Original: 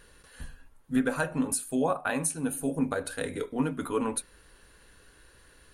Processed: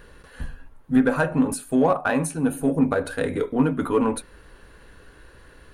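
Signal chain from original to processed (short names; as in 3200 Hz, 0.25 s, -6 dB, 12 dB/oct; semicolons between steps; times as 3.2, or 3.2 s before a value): bell 9500 Hz -12.5 dB 2.7 oct; in parallel at -7.5 dB: soft clip -31 dBFS, distortion -7 dB; on the sum: gain +7 dB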